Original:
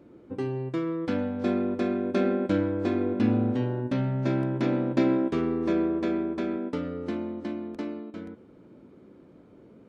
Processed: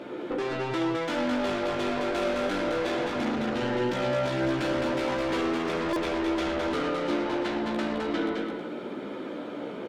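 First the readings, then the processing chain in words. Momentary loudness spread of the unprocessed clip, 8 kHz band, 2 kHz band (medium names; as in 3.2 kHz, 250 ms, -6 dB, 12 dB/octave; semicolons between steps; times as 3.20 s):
10 LU, no reading, +8.5 dB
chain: peaking EQ 3.4 kHz +7 dB 0.4 oct; on a send: delay 109 ms -11 dB; on the sum: overdrive pedal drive 35 dB, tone 2.9 kHz, clips at -10 dBFS; in parallel at -3.5 dB: saturation -20 dBFS, distortion -15 dB; on the sum: chorus voices 2, 0.61 Hz, delay 15 ms, depth 2 ms; peak limiter -16 dBFS, peak gain reduction 7 dB; bass shelf 170 Hz -8 dB; band-stop 1.1 kHz, Q 13; loudspeakers at several distances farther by 25 m -12 dB, 73 m -4 dB; buffer glitch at 5.93 s, samples 128, times 10; trim -6 dB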